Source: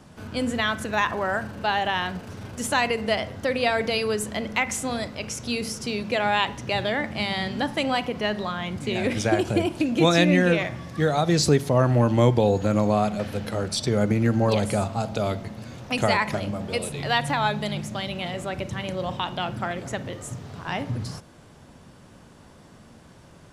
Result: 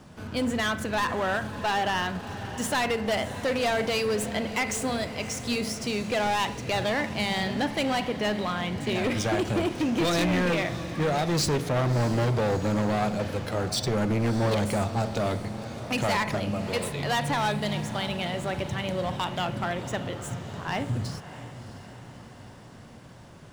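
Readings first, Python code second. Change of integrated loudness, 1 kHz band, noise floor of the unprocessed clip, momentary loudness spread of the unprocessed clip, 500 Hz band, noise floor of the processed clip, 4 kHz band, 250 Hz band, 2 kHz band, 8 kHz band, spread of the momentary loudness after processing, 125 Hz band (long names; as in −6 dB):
−3.0 dB, −2.5 dB, −50 dBFS, 11 LU, −3.0 dB, −46 dBFS, −2.5 dB, −3.0 dB, −3.0 dB, −1.5 dB, 9 LU, −3.0 dB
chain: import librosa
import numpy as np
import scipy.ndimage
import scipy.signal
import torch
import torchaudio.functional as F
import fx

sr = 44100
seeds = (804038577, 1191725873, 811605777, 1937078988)

y = scipy.signal.medfilt(x, 3)
y = np.clip(y, -10.0 ** (-22.0 / 20.0), 10.0 ** (-22.0 / 20.0))
y = fx.echo_diffused(y, sr, ms=638, feedback_pct=57, wet_db=-13.5)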